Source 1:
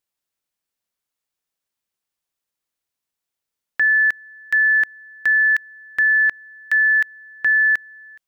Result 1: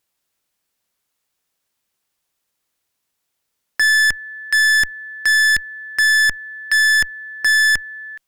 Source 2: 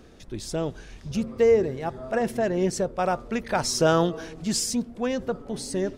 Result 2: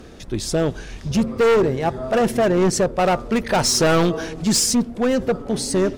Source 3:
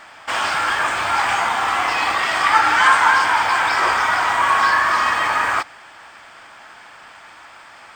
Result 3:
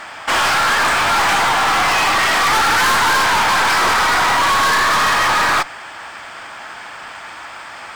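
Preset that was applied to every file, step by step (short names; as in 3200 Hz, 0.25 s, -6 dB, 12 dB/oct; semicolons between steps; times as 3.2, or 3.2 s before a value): added harmonics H 4 -22 dB, 5 -19 dB, 8 -25 dB, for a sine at -1 dBFS; hard clip -18.5 dBFS; gain +5.5 dB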